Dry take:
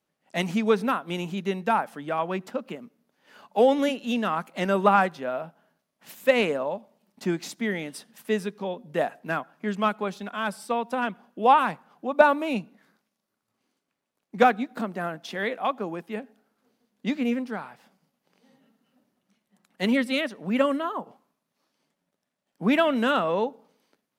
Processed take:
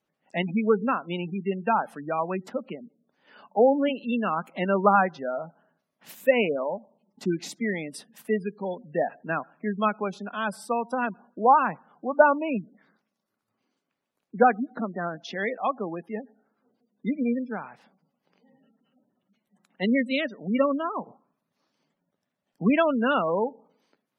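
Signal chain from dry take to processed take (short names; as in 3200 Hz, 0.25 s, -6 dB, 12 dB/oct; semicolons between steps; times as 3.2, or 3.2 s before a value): spectral gate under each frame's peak -20 dB strong; 20.93–22.7 low shelf 100 Hz +10.5 dB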